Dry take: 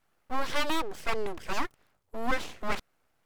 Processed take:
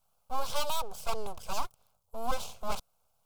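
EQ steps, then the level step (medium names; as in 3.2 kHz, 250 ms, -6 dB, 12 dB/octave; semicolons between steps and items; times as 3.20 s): treble shelf 6.8 kHz +7.5 dB; static phaser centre 770 Hz, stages 4; 0.0 dB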